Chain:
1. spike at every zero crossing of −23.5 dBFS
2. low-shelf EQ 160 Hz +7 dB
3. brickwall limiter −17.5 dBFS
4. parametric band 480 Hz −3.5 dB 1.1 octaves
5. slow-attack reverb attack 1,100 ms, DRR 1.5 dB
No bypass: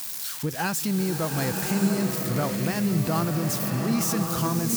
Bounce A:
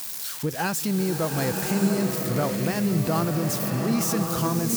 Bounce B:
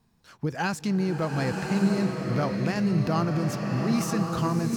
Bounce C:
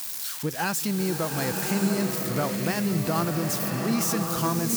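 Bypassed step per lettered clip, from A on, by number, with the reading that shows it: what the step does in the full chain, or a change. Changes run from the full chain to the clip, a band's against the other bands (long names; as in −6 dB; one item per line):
4, 500 Hz band +2.5 dB
1, distortion level −10 dB
2, 125 Hz band −3.0 dB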